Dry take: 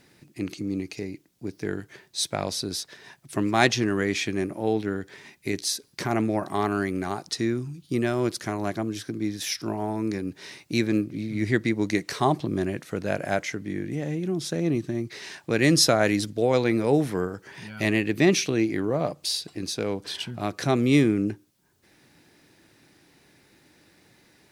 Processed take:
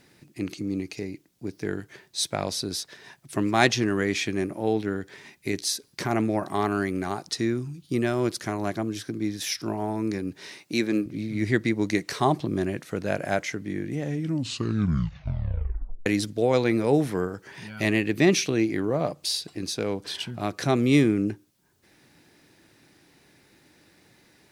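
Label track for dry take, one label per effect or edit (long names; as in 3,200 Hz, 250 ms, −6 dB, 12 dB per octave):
10.480000	11.060000	high-pass filter 190 Hz
14.030000	14.030000	tape stop 2.03 s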